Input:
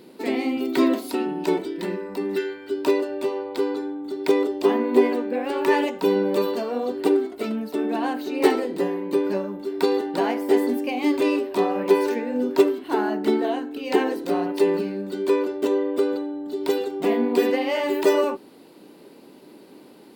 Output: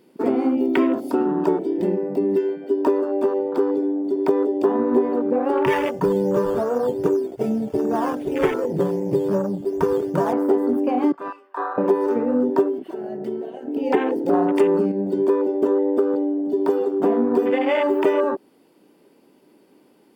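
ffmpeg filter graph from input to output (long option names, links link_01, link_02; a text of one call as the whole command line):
ffmpeg -i in.wav -filter_complex "[0:a]asettb=1/sr,asplit=3[link_01][link_02][link_03];[link_01]atrim=end=5.664[link_04];[link_02]atrim=start=5.66:end=10.33,asetpts=PTS-STARTPTS,afade=type=in:duration=0.004:curve=qsin,afade=type=out:start_time=4.666:duration=0.004:curve=qsin,lowshelf=frequency=180:width_type=q:width=3:gain=11.5,bandreject=frequency=780:width=6.9,acrusher=samples=9:mix=1:aa=0.000001:lfo=1:lforange=5.4:lforate=2.6[link_05];[link_03]atrim=start=10.326[link_06];[link_04][link_05]acrossfade=duration=0.004:curve1=hsin:curve2=qsin[link_07];[link_07][link_06]acrossfade=duration=0.004:curve1=qsin:curve2=hsin,asettb=1/sr,asplit=3[link_08][link_09][link_10];[link_08]atrim=end=11.124[link_11];[link_09]atrim=start=11.12:end=11.78,asetpts=PTS-STARTPTS,afade=type=in:duration=0.004:curve=qsin,afade=type=out:start_time=0.656:duration=0.004:curve=qsin,bandpass=frequency=1200:width_type=q:width=3.6,aemphasis=mode=production:type=75kf[link_12];[link_10]atrim=start=11.776[link_13];[link_11][link_12]acrossfade=duration=0.004:curve1=hsin:curve2=qsin[link_14];[link_14][link_13]acrossfade=duration=0.004:curve1=qsin:curve2=hsin,asettb=1/sr,asplit=3[link_15][link_16][link_17];[link_15]atrim=end=12.824[link_18];[link_16]atrim=start=12.82:end=13.68,asetpts=PTS-STARTPTS,afade=type=in:duration=0.004:curve=qsin,afade=type=out:start_time=0.856:duration=0.004:curve=qsin,lowshelf=frequency=490:gain=-8.5,acompressor=threshold=-34dB:ratio=10:attack=3.2:release=140:knee=1:detection=peak,aecho=1:1:5.2:0.79,atrim=end_sample=37926[link_19];[link_17]atrim=start=13.676[link_20];[link_18][link_19]acrossfade=duration=0.004:curve1=hsin:curve2=qsin[link_21];[link_21][link_20]acrossfade=duration=0.004:curve1=qsin:curve2=hsin,asettb=1/sr,asplit=3[link_22][link_23][link_24];[link_22]atrim=end=14.334[link_25];[link_23]atrim=start=14.33:end=14.92,asetpts=PTS-STARTPTS,afade=type=in:duration=0.004:curve=qsin,afade=type=out:start_time=0.586:duration=0.004:curve=qsin,equalizer=frequency=7800:width_type=o:width=0.68:gain=7.5,acontrast=67[link_26];[link_24]atrim=start=14.916[link_27];[link_25][link_26]acrossfade=duration=0.004:curve1=hsin:curve2=qsin[link_28];[link_28][link_27]acrossfade=duration=0.004:curve1=qsin:curve2=hsin,bandreject=frequency=4000:width=5.6,afwtdn=0.0316,acompressor=threshold=-25dB:ratio=4,volume=8.5dB" out.wav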